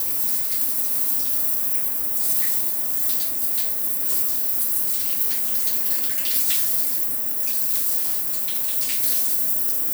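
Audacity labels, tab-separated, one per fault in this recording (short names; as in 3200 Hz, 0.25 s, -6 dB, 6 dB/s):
7.980000	8.760000	clipped -18.5 dBFS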